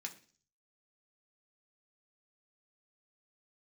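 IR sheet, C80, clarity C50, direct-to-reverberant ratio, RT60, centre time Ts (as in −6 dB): 18.5 dB, 14.5 dB, 1.0 dB, 0.45 s, 9 ms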